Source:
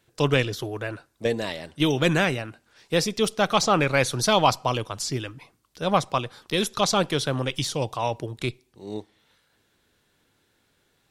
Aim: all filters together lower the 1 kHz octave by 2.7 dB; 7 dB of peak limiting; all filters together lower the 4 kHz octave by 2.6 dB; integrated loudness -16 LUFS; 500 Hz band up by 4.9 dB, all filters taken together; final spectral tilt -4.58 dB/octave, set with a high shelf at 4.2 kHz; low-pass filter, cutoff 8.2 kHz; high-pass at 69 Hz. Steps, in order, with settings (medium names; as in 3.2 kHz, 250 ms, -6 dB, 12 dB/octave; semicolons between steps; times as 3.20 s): high-pass 69 Hz; low-pass 8.2 kHz; peaking EQ 500 Hz +7.5 dB; peaking EQ 1 kHz -6.5 dB; peaking EQ 4 kHz -6 dB; treble shelf 4.2 kHz +5.5 dB; trim +9.5 dB; peak limiter -2.5 dBFS